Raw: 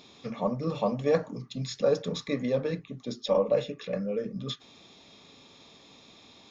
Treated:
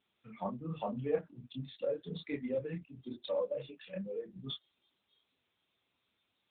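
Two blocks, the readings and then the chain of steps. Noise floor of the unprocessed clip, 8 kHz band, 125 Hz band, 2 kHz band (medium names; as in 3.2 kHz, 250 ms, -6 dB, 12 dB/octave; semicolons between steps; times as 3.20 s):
-56 dBFS, no reading, -9.0 dB, -10.0 dB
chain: expander on every frequency bin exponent 1.5; spectral noise reduction 13 dB; compression 2.5:1, threshold -35 dBFS, peak gain reduction 9.5 dB; chorus voices 4, 1.2 Hz, delay 29 ms, depth 3 ms; trim +3.5 dB; AMR-NB 10.2 kbps 8 kHz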